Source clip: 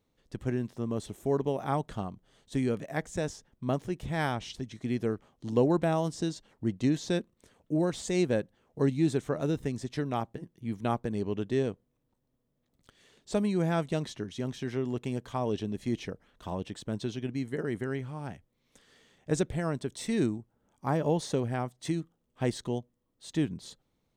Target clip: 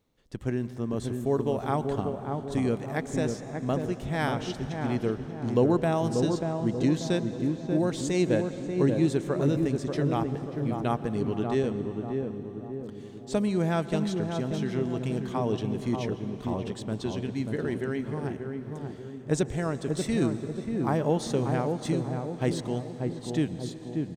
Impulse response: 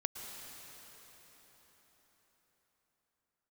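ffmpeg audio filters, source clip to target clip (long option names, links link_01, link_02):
-filter_complex "[0:a]asplit=2[link_01][link_02];[link_02]adelay=587,lowpass=frequency=860:poles=1,volume=-3.5dB,asplit=2[link_03][link_04];[link_04]adelay=587,lowpass=frequency=860:poles=1,volume=0.55,asplit=2[link_05][link_06];[link_06]adelay=587,lowpass=frequency=860:poles=1,volume=0.55,asplit=2[link_07][link_08];[link_08]adelay=587,lowpass=frequency=860:poles=1,volume=0.55,asplit=2[link_09][link_10];[link_10]adelay=587,lowpass=frequency=860:poles=1,volume=0.55,asplit=2[link_11][link_12];[link_12]adelay=587,lowpass=frequency=860:poles=1,volume=0.55,asplit=2[link_13][link_14];[link_14]adelay=587,lowpass=frequency=860:poles=1,volume=0.55,asplit=2[link_15][link_16];[link_16]adelay=587,lowpass=frequency=860:poles=1,volume=0.55[link_17];[link_01][link_03][link_05][link_07][link_09][link_11][link_13][link_15][link_17]amix=inputs=9:normalize=0,asplit=2[link_18][link_19];[1:a]atrim=start_sample=2205[link_20];[link_19][link_20]afir=irnorm=-1:irlink=0,volume=-6dB[link_21];[link_18][link_21]amix=inputs=2:normalize=0,volume=-1.5dB"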